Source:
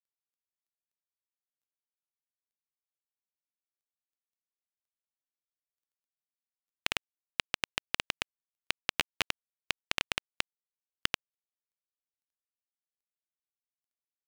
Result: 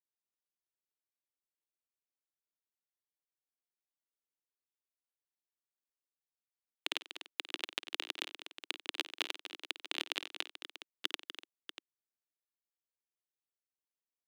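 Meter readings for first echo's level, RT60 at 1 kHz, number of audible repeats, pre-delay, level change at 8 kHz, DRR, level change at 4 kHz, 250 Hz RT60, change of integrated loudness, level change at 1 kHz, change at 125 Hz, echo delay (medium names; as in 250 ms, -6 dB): -15.5 dB, no reverb, 5, no reverb, -7.5 dB, no reverb, -2.5 dB, no reverb, -4.5 dB, -7.0 dB, under -20 dB, 52 ms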